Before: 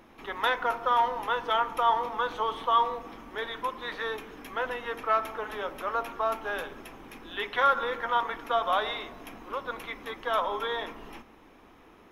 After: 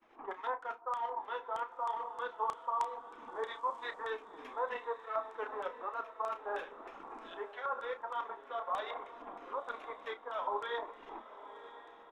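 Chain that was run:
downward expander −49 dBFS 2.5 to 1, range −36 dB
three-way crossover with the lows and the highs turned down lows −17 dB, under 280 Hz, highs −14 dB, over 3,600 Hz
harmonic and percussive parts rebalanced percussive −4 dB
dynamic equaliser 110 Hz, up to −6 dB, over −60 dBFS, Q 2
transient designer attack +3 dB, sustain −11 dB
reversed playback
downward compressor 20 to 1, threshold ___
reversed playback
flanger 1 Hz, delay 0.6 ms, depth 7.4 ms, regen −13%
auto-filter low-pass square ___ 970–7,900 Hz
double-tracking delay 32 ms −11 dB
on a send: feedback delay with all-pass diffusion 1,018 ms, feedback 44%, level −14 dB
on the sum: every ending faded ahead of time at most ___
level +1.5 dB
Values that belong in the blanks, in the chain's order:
−34 dBFS, 3.2 Hz, 480 dB per second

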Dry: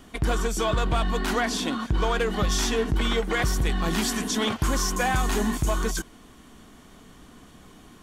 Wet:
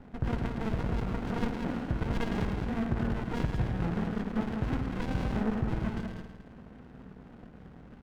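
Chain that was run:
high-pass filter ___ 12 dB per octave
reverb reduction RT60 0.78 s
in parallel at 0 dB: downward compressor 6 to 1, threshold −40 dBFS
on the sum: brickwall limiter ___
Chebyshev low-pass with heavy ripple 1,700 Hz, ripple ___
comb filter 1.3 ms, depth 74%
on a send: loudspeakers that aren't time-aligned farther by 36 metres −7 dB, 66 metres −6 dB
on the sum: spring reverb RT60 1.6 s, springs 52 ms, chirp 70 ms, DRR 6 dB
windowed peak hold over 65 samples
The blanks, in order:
85 Hz, −16 dBFS, 6 dB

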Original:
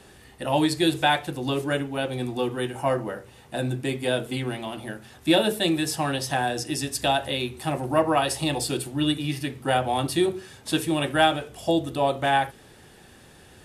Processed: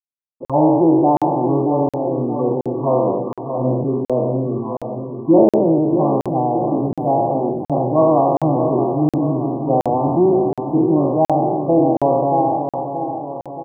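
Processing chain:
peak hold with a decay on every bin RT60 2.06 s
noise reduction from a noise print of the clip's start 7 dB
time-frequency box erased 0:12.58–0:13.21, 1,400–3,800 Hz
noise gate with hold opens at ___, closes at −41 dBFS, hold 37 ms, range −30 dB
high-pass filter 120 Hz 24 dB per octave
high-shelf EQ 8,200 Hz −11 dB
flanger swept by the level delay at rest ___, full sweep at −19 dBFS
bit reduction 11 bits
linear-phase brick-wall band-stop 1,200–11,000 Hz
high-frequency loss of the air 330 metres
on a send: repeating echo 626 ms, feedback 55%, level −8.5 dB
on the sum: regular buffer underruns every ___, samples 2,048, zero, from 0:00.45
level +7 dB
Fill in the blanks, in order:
−40 dBFS, 3.8 ms, 0.72 s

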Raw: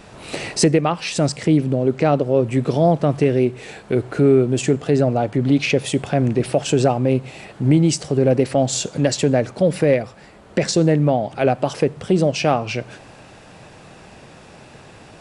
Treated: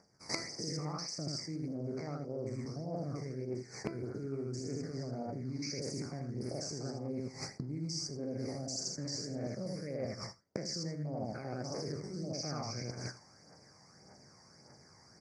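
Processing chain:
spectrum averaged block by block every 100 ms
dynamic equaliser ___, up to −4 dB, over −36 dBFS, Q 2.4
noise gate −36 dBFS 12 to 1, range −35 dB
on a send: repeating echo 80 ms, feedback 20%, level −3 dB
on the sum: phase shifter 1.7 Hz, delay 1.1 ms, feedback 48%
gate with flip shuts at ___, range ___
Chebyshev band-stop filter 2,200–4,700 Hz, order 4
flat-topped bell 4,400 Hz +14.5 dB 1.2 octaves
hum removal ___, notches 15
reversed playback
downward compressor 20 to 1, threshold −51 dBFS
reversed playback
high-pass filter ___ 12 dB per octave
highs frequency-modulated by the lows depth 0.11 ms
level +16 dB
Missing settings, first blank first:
890 Hz, −19 dBFS, −27 dB, 333.7 Hz, 98 Hz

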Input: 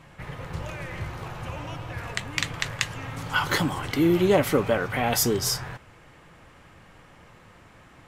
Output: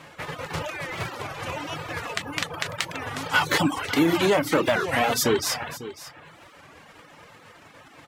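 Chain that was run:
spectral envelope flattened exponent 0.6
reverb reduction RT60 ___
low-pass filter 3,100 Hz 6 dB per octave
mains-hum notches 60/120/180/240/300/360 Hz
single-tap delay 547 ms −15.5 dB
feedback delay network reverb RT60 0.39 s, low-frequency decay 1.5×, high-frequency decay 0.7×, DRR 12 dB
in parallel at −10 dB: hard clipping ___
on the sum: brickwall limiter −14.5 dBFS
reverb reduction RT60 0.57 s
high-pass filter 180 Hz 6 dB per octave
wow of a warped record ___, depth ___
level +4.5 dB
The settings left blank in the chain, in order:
0.56 s, −22.5 dBFS, 33 1/3 rpm, 160 cents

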